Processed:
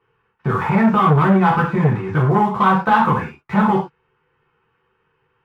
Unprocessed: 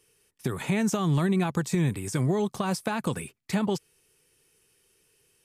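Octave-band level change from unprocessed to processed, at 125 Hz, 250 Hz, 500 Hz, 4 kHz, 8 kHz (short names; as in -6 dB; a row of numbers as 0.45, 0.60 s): +9.5 dB, +9.5 dB, +9.0 dB, +2.5 dB, under -15 dB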